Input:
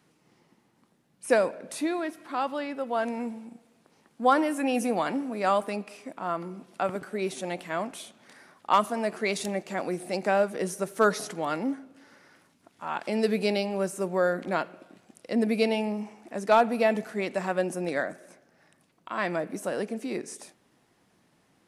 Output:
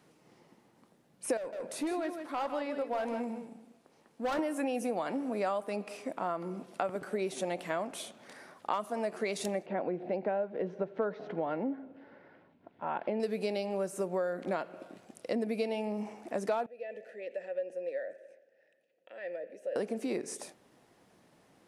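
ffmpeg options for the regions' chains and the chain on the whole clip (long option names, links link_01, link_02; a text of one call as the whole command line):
ffmpeg -i in.wav -filter_complex "[0:a]asettb=1/sr,asplit=3[link_01][link_02][link_03];[link_01]atrim=end=1.374[link_04];[link_02]atrim=start=1.37:end=4.39,asetpts=PTS-STARTPTS,afade=type=in:duration=0.004:curve=qsin,afade=type=out:start_time=3.016:duration=0.004:curve=qsin,flanger=delay=2.4:depth=9.1:regen=-77:speed=1.6:shape=sinusoidal,asoftclip=type=hard:threshold=-28.5dB,aecho=1:1:155:0.335,atrim=end_sample=133182[link_05];[link_03]atrim=start=4.386[link_06];[link_04][link_05]acrossfade=duration=0.004:curve1=hsin:curve2=qsin[link_07];[link_07][link_06]acrossfade=duration=0.004:curve1=qsin:curve2=hsin,asettb=1/sr,asplit=3[link_08][link_09][link_10];[link_08]atrim=end=9.664[link_11];[link_09]atrim=start=9.66:end=13.2,asetpts=PTS-STARTPTS,afade=type=in:duration=0.004:curve=qsin,afade=type=out:start_time=3.536:duration=0.004:curve=qsin,lowpass=frequency=3600:width=0.5412,lowpass=frequency=3600:width=1.3066,highshelf=frequency=2200:gain=-12,bandreject=frequency=1200:width=8.1[link_12];[link_10]atrim=start=13.196[link_13];[link_11][link_12]acrossfade=duration=0.004:curve1=hsin:curve2=qsin[link_14];[link_14][link_13]acrossfade=duration=0.004:curve1=qsin:curve2=hsin,asettb=1/sr,asplit=3[link_15][link_16][link_17];[link_15]atrim=end=16.664[link_18];[link_16]atrim=start=16.66:end=19.76,asetpts=PTS-STARTPTS,afade=type=in:duration=0.004:curve=qsin,afade=type=out:start_time=3.096:duration=0.004:curve=qsin,highshelf=frequency=4600:gain=8,acompressor=threshold=-34dB:ratio=2:attack=3.2:release=140:knee=1:detection=peak,asplit=3[link_19][link_20][link_21];[link_19]bandpass=frequency=530:width_type=q:width=8,volume=0dB[link_22];[link_20]bandpass=frequency=1840:width_type=q:width=8,volume=-6dB[link_23];[link_21]bandpass=frequency=2480:width_type=q:width=8,volume=-9dB[link_24];[link_22][link_23][link_24]amix=inputs=3:normalize=0[link_25];[link_17]atrim=start=19.756[link_26];[link_18][link_25]acrossfade=duration=0.004:curve1=hsin:curve2=qsin[link_27];[link_27][link_26]acrossfade=duration=0.004:curve1=qsin:curve2=hsin,equalizer=frequency=550:width=1.1:gain=5.5,acompressor=threshold=-30dB:ratio=6" out.wav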